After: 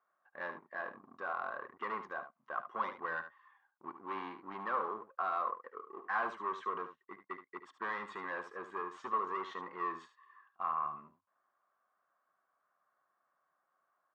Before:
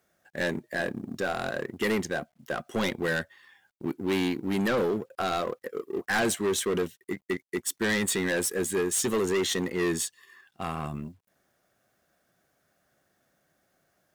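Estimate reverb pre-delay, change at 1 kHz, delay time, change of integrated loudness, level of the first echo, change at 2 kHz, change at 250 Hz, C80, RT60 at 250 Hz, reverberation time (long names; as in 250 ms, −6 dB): no reverb audible, −0.5 dB, 73 ms, −10.5 dB, −10.5 dB, −10.5 dB, −22.0 dB, no reverb audible, no reverb audible, no reverb audible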